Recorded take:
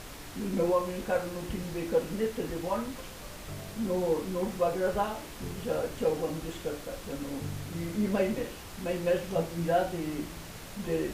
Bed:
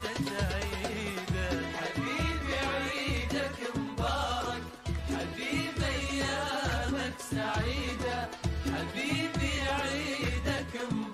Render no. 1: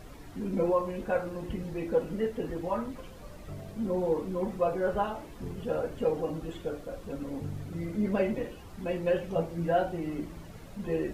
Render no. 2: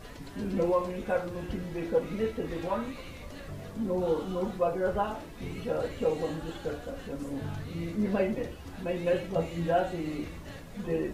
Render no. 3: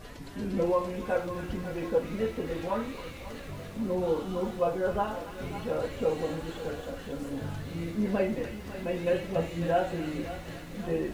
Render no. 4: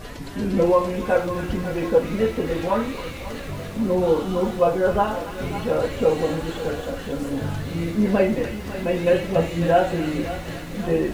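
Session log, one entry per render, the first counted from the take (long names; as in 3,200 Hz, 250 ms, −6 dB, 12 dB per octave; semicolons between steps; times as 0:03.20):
broadband denoise 12 dB, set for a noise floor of −44 dBFS
mix in bed −14.5 dB
delay with a high-pass on its return 275 ms, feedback 68%, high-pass 1,500 Hz, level −7.5 dB; feedback echo at a low word length 547 ms, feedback 55%, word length 8 bits, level −14 dB
level +9 dB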